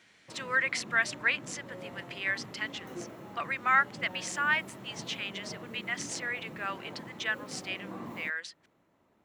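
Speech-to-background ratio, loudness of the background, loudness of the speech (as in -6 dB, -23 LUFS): 13.5 dB, -45.5 LUFS, -32.0 LUFS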